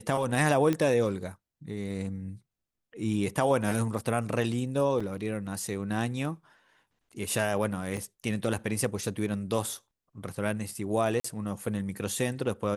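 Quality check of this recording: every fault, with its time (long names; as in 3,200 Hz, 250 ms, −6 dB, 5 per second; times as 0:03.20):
0:00.73: click −15 dBFS
0:05.00: drop-out 4.9 ms
0:07.97: drop-out 3.9 ms
0:11.20–0:11.24: drop-out 44 ms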